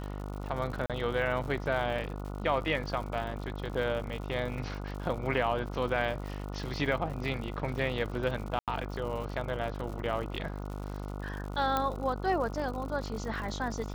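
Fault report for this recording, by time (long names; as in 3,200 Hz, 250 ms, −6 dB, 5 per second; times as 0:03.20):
mains buzz 50 Hz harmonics 29 −38 dBFS
surface crackle 120 per second −39 dBFS
0:00.86–0:00.90: drop-out 37 ms
0:08.59–0:08.68: drop-out 87 ms
0:11.77: click −15 dBFS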